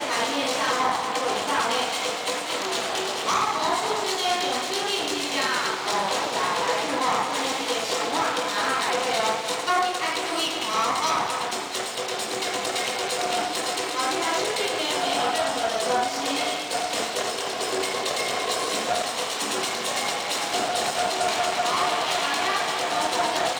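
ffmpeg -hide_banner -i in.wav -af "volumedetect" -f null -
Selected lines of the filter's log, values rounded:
mean_volume: -25.5 dB
max_volume: -9.2 dB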